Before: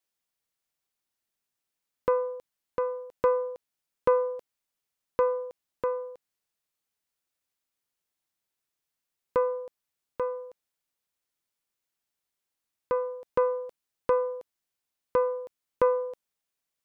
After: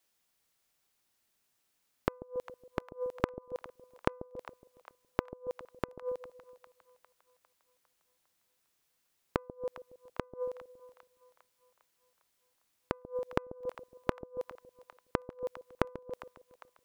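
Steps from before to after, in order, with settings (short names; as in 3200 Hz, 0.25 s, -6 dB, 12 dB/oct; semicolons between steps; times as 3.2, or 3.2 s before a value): flipped gate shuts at -26 dBFS, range -37 dB; split-band echo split 690 Hz, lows 0.139 s, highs 0.403 s, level -14.5 dB; gain +8 dB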